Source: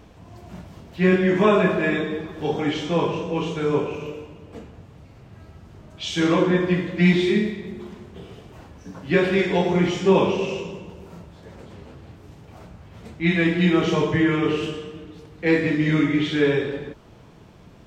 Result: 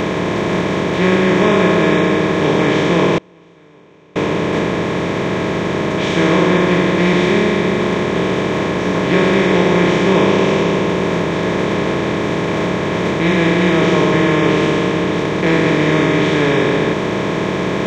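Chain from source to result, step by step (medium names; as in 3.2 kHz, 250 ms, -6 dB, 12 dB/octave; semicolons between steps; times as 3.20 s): spectral levelling over time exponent 0.2; 3.18–4.16 s: gate -2 dBFS, range -31 dB; trim -2.5 dB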